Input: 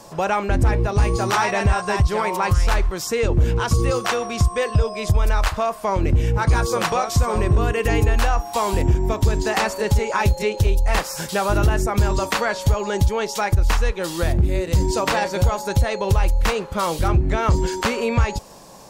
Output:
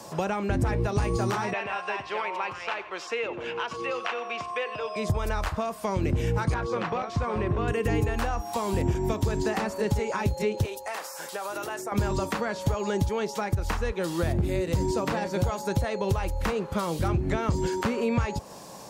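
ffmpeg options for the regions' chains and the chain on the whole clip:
-filter_complex "[0:a]asettb=1/sr,asplit=3[a][b][c];[a]atrim=end=1.534[d];[b]atrim=start=1.53:end=4.96,asetpts=PTS-STARTPTS,afade=t=in:d=0.004:c=qsin,afade=t=out:st=3.426:d=0.004:c=qsin,highpass=610,lowpass=4.3k,equalizer=f=2.7k:t=o:w=0.59:g=10.5,aecho=1:1:91:0.141,atrim=end_sample=151263[e];[c]atrim=start=4.956[f];[d][e]acrossfade=d=0.004:c1=hsin:c2=qsin[g];[g][f]acrossfade=d=0.004:c1=qsin:c2=hsin,asettb=1/sr,asplit=3[h][i][j];[h]atrim=end=6.544[k];[i]atrim=start=6.54:end=7.68,asetpts=PTS-STARTPTS,afade=t=in:d=0.004:c=qsin,afade=t=out:st=1.136:d=0.004:c=qsin,lowshelf=f=320:g=-5.5,aeval=exprs='0.2*(abs(mod(val(0)/0.2+3,4)-2)-1)':c=same,lowpass=2.5k[l];[j]atrim=start=7.676[m];[k][l]acrossfade=d=0.004:c1=hsin:c2=qsin[n];[n][m]acrossfade=d=0.004:c1=qsin:c2=hsin,asettb=1/sr,asplit=3[o][p][q];[o]atrim=end=10.654[r];[p]atrim=start=10.65:end=11.92,asetpts=PTS-STARTPTS,afade=t=in:d=0.004:c=qsin,afade=t=out:st=1.266:d=0.004:c=qsin,highpass=500,highshelf=f=5.6k:g=8,acompressor=threshold=-27dB:ratio=6:attack=3.2:release=140:knee=1:detection=peak[s];[q]atrim=start=11.916[t];[r][s]acrossfade=d=0.004:c1=hsin:c2=qsin[u];[u][t]acrossfade=d=0.004:c1=qsin:c2=hsin,highpass=81,acrossover=split=350|2000[v][w][x];[v]acompressor=threshold=-23dB:ratio=4[y];[w]acompressor=threshold=-31dB:ratio=4[z];[x]acompressor=threshold=-42dB:ratio=4[aa];[y][z][aa]amix=inputs=3:normalize=0"

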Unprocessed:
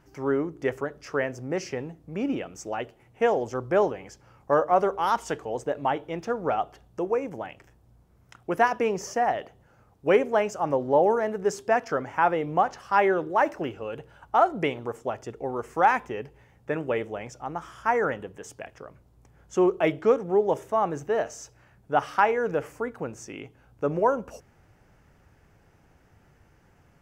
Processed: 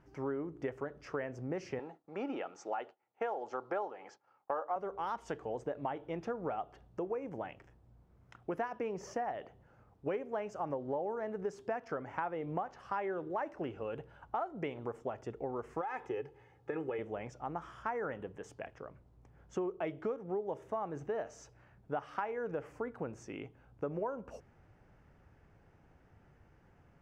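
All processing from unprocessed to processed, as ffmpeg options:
-filter_complex "[0:a]asettb=1/sr,asplit=3[a][b][c];[a]atrim=end=1.794[d];[b]atrim=start=1.79:end=4.76,asetpts=PTS-STARTPTS,afade=t=in:d=0.004:c=qsin,afade=t=out:st=2.966:d=0.004:c=qsin,agate=range=-33dB:threshold=-47dB:ratio=3:release=100:detection=peak,highpass=360,equalizer=f=830:t=q:w=4:g=9,equalizer=f=1.4k:t=q:w=4:g=9,equalizer=f=4.1k:t=q:w=4:g=6,lowpass=f=7.6k:w=0.5412,lowpass=f=7.6k:w=1.3066,bandreject=f=1.5k:w=14[e];[c]atrim=start=4.756[f];[d][e]acrossfade=d=0.004:c1=hsin:c2=qsin[g];[g][f]acrossfade=d=0.004:c1=qsin:c2=hsin,asettb=1/sr,asplit=3[h][i][j];[h]atrim=end=15.814[k];[i]atrim=start=15.81:end=16.99,asetpts=PTS-STARTPTS,afade=t=in:d=0.004:c=qsin,afade=t=out:st=1.176:d=0.004:c=qsin,highpass=120,aecho=1:1:2.4:0.7,atrim=end_sample=52038,acompressor=threshold=-24dB:ratio=5:attack=3.2:release=140:knee=1:detection=peak[l];[j]atrim=start=16.986[m];[k][l]acrossfade=d=0.004:c1=hsin:c2=qsin[n];[n][m]acrossfade=d=0.004:c1=qsin:c2=hsin,aemphasis=mode=reproduction:type=75kf,acompressor=threshold=-30dB:ratio=6,volume=-4dB"

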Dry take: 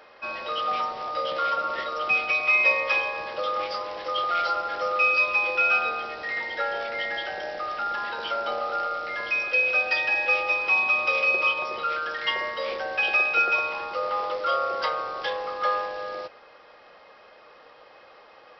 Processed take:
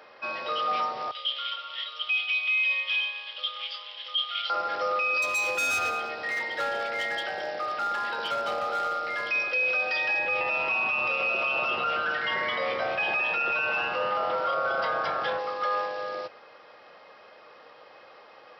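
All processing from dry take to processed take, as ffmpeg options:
-filter_complex "[0:a]asettb=1/sr,asplit=3[a][b][c];[a]atrim=end=1.114[d];[b]atrim=start=1.11:end=4.5,asetpts=PTS-STARTPTS,afade=t=in:d=0.004:c=qsin,afade=t=out:st=3.386:d=0.004:c=qsin,lowpass=f=3.2k:t=q:w=9.4,aderivative[e];[c]atrim=start=4.496[f];[d][e]acrossfade=d=0.004:c1=hsin:c2=qsin[g];[g][f]acrossfade=d=0.004:c1=qsin:c2=hsin,asettb=1/sr,asplit=3[h][i][j];[h]atrim=end=5.224[k];[i]atrim=start=5.22:end=9.31,asetpts=PTS-STARTPTS,afade=t=in:d=0.004:c=qsin,afade=t=out:st=4.086:d=0.004:c=qsin,asoftclip=type=hard:threshold=-24.5dB,aecho=1:1:201:0.133,atrim=end_sample=180369[l];[j]atrim=start=9.306[m];[k][l]acrossfade=d=0.004:c1=hsin:c2=qsin[n];[n][m]acrossfade=d=0.004:c1=qsin:c2=hsin,asettb=1/sr,asplit=3[o][p][q];[o]atrim=end=10.194[r];[p]atrim=start=10.19:end=15.39,asetpts=PTS-STARTPTS,afade=t=in:d=0.004:c=qsin,afade=t=out:st=5.196:d=0.004:c=qsin,bass=f=250:g=9,treble=f=4k:g=-8,asplit=5[s][t][u][v][w];[t]adelay=216,afreqshift=130,volume=-4dB[x];[u]adelay=432,afreqshift=260,volume=-14.2dB[y];[v]adelay=648,afreqshift=390,volume=-24.3dB[z];[w]adelay=864,afreqshift=520,volume=-34.5dB[aa];[s][x][y][z][aa]amix=inputs=5:normalize=0,atrim=end_sample=229320[ab];[q]atrim=start=15.386[ac];[r][ab]acrossfade=d=0.004:c1=hsin:c2=qsin[ad];[ad][ac]acrossfade=d=0.004:c1=qsin:c2=hsin,alimiter=limit=-19.5dB:level=0:latency=1:release=11,highpass=f=89:w=0.5412,highpass=f=89:w=1.3066"

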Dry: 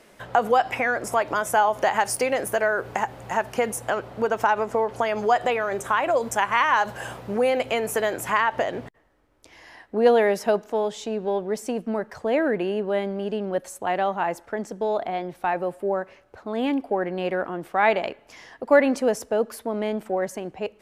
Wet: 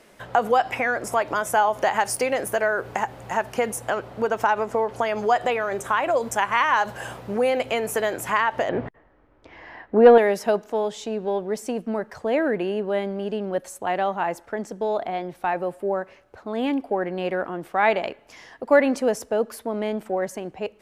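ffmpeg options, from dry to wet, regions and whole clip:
-filter_complex "[0:a]asettb=1/sr,asplit=3[a][b][c];[a]atrim=end=8.694[d];[b]atrim=start=8.69:end=10.18,asetpts=PTS-STARTPTS,afade=t=in:d=0.004:c=qsin,afade=t=out:st=1.486:d=0.004:c=qsin,lowpass=2.1k,acontrast=68[e];[c]atrim=start=10.176[f];[d][e]acrossfade=d=0.004:c1=hsin:c2=qsin[g];[g][f]acrossfade=d=0.004:c1=qsin:c2=hsin"

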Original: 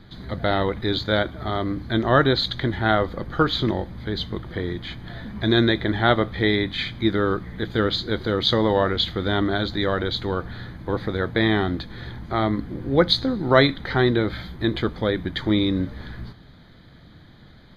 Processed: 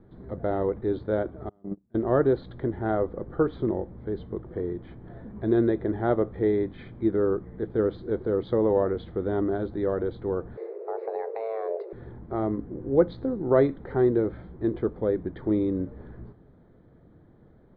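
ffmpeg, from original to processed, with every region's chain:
-filter_complex "[0:a]asettb=1/sr,asplit=3[a][b][c];[a]atrim=end=1.494[d];[b]atrim=start=1.49:end=1.95,asetpts=PTS-STARTPTS,afade=t=in:d=0.004:c=qsin,afade=t=out:st=0.456:d=0.004:c=qsin,equalizer=f=190:t=o:w=0.58:g=14,asplit=2[e][f];[f]adelay=36,volume=-9dB[g];[e][g]amix=inputs=2:normalize=0,atrim=end_sample=20286,agate=range=-35dB:threshold=-16dB:ratio=16:release=100:detection=peak[h];[c]atrim=start=1.946[i];[d][h]acrossfade=d=0.004:c1=hsin:c2=qsin[j];[j][i]acrossfade=d=0.004:c1=qsin:c2=hsin,asettb=1/sr,asplit=3[k][l][m];[k]atrim=end=10.574[n];[l]atrim=start=10.57:end=11.93,asetpts=PTS-STARTPTS,afade=t=in:d=0.004:c=qsin,afade=t=out:st=1.356:d=0.004:c=qsin,afreqshift=340,asoftclip=type=hard:threshold=-9.5dB,acompressor=threshold=-21dB:ratio=10:attack=3.2:release=140:knee=1:detection=peak[o];[m]atrim=start=11.926[p];[n][o]acrossfade=d=0.004:c1=hsin:c2=qsin[q];[q][p]acrossfade=d=0.004:c1=qsin:c2=hsin,lowpass=1k,equalizer=f=420:t=o:w=0.93:g=9,volume=-8dB"

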